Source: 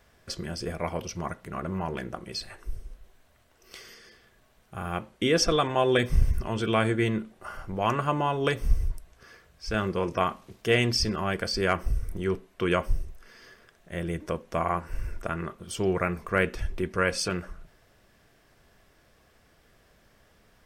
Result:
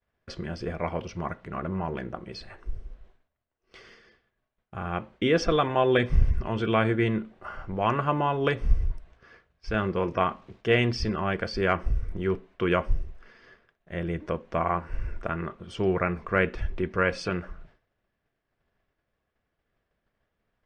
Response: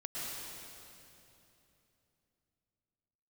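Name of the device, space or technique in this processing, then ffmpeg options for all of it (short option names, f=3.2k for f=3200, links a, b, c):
hearing-loss simulation: -filter_complex "[0:a]asettb=1/sr,asplit=3[a][b][c];[a]atrim=end=1.684[d];[b]atrim=start=1.68:end=3.84,asetpts=PTS-STARTPTS,afade=t=in:d=0.004:c=qsin,afade=t=out:st=2.156:d=0.004:c=qsin,equalizer=f=2.4k:w=0.62:g=-2.5[e];[c]atrim=start=3.836[f];[d][e]acrossfade=d=0.004:c1=hsin:c2=qsin[g];[g][f]acrossfade=d=0.004:c1=qsin:c2=hsin,lowpass=3.1k,agate=range=-33dB:threshold=-49dB:ratio=3:detection=peak,volume=1dB"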